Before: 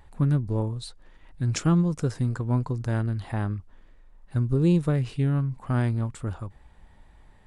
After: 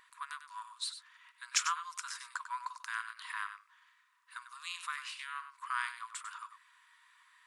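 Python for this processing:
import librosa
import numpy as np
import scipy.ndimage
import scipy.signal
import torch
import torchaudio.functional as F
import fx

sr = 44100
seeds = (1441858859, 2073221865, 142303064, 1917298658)

y = fx.diode_clip(x, sr, knee_db=-11.0)
y = fx.brickwall_highpass(y, sr, low_hz=940.0)
y = y + 10.0 ** (-10.5 / 20.0) * np.pad(y, (int(97 * sr / 1000.0), 0))[:len(y)]
y = y * 10.0 ** (2.5 / 20.0)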